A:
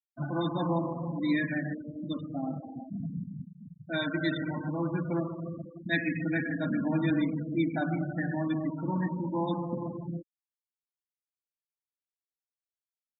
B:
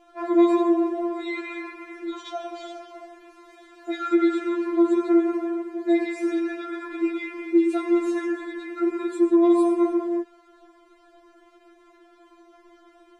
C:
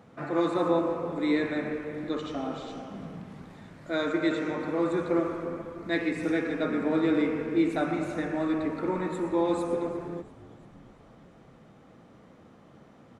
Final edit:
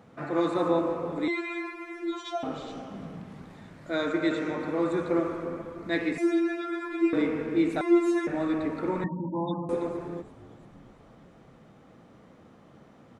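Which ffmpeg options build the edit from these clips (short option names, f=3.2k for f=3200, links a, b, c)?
-filter_complex "[1:a]asplit=3[a][b][c];[2:a]asplit=5[d][e][f][g][h];[d]atrim=end=1.282[i];[a]atrim=start=1.278:end=2.432[j];[e]atrim=start=2.428:end=6.182[k];[b]atrim=start=6.178:end=7.132[l];[f]atrim=start=7.128:end=7.812[m];[c]atrim=start=7.808:end=8.272[n];[g]atrim=start=8.268:end=9.042[o];[0:a]atrim=start=9.038:end=9.692[p];[h]atrim=start=9.688[q];[i][j]acrossfade=d=0.004:c1=hsin:c2=hsin[r];[r][k]acrossfade=d=0.004:c1=hsin:c2=hsin[s];[s][l]acrossfade=d=0.004:c1=hsin:c2=hsin[t];[t][m]acrossfade=d=0.004:c1=hsin:c2=hsin[u];[u][n]acrossfade=d=0.004:c1=hsin:c2=hsin[v];[v][o]acrossfade=d=0.004:c1=hsin:c2=hsin[w];[w][p]acrossfade=d=0.004:c1=hsin:c2=hsin[x];[x][q]acrossfade=d=0.004:c1=hsin:c2=hsin"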